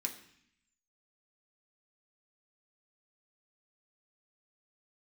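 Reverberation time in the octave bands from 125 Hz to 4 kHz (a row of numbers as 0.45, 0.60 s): 0.95, 0.95, 0.60, 0.70, 0.90, 0.85 s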